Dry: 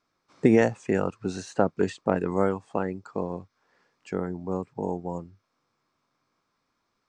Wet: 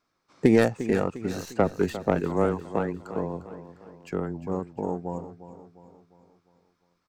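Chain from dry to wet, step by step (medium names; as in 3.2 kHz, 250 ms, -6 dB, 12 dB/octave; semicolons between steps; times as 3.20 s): tracing distortion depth 0.14 ms; 1.54–4.47 s: frequency shift -13 Hz; feedback delay 352 ms, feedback 48%, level -13 dB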